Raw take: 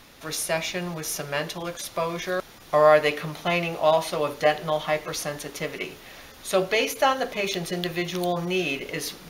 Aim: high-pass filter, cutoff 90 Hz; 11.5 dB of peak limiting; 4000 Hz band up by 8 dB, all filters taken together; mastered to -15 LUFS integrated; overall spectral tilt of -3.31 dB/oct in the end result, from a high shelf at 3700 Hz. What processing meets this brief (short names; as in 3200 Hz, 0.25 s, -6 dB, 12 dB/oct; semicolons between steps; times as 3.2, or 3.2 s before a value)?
HPF 90 Hz; high shelf 3700 Hz +4 dB; bell 4000 Hz +8 dB; gain +10.5 dB; limiter -2.5 dBFS